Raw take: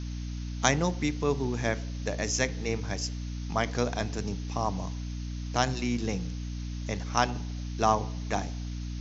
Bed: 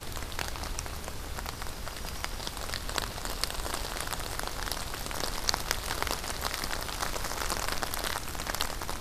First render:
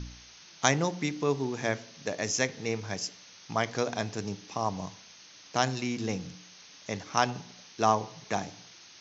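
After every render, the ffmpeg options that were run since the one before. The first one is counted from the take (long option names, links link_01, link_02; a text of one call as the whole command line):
ffmpeg -i in.wav -af "bandreject=frequency=60:width_type=h:width=4,bandreject=frequency=120:width_type=h:width=4,bandreject=frequency=180:width_type=h:width=4,bandreject=frequency=240:width_type=h:width=4,bandreject=frequency=300:width_type=h:width=4" out.wav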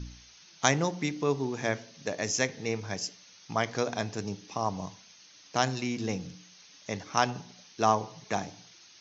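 ffmpeg -i in.wav -af "afftdn=noise_reduction=6:noise_floor=-53" out.wav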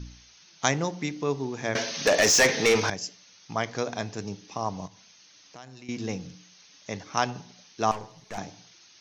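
ffmpeg -i in.wav -filter_complex "[0:a]asettb=1/sr,asplit=3[link_01][link_02][link_03];[link_01]atrim=end=1.754[link_04];[link_02]atrim=start=1.75:end=2.9,asetpts=PTS-STARTPTS,afade=type=in:duration=0.004:curve=qsin,afade=type=out:start_time=1.146:duration=0.004:curve=qsin,asplit=2[link_05][link_06];[link_06]highpass=frequency=720:poles=1,volume=28dB,asoftclip=type=tanh:threshold=-10dB[link_07];[link_05][link_07]amix=inputs=2:normalize=0,lowpass=frequency=6200:poles=1,volume=-6dB[link_08];[link_03]atrim=start=2.896[link_09];[link_04][link_08]acrossfade=duration=0.004:curve1=hsin:curve2=qsin[link_10];[link_10][link_09]acrossfade=duration=0.004:curve1=qsin:curve2=hsin,asettb=1/sr,asplit=3[link_11][link_12][link_13];[link_11]atrim=end=4.874[link_14];[link_12]atrim=start=4.87:end=5.89,asetpts=PTS-STARTPTS,afade=type=in:duration=0.004:curve=qsin,afade=type=out:start_time=1.016:duration=0.004:curve=qsin,acompressor=threshold=-50dB:ratio=2.5:attack=3.2:release=140:knee=1:detection=peak[link_15];[link_13]atrim=start=5.886[link_16];[link_14][link_15]acrossfade=duration=0.004:curve1=hsin:curve2=qsin[link_17];[link_17][link_16]acrossfade=duration=0.004:curve1=qsin:curve2=hsin,asettb=1/sr,asplit=3[link_18][link_19][link_20];[link_18]atrim=end=7.914[link_21];[link_19]atrim=start=7.91:end=8.38,asetpts=PTS-STARTPTS,afade=type=in:duration=0.004:curve=qsin,afade=type=out:start_time=0.466:duration=0.004:curve=qsin,aeval=exprs='(tanh(39.8*val(0)+0.65)-tanh(0.65))/39.8':channel_layout=same[link_22];[link_20]atrim=start=8.376[link_23];[link_21][link_22]acrossfade=duration=0.004:curve1=hsin:curve2=qsin[link_24];[link_24][link_23]acrossfade=duration=0.004:curve1=qsin:curve2=hsin" out.wav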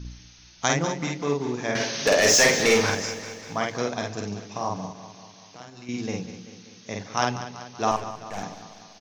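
ffmpeg -i in.wav -filter_complex "[0:a]asplit=2[link_01][link_02];[link_02]adelay=49,volume=-2dB[link_03];[link_01][link_03]amix=inputs=2:normalize=0,aecho=1:1:193|386|579|772|965|1158|1351:0.237|0.14|0.0825|0.0487|0.0287|0.017|0.01" out.wav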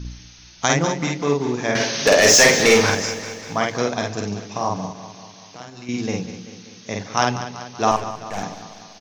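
ffmpeg -i in.wav -af "volume=5.5dB,alimiter=limit=-2dB:level=0:latency=1" out.wav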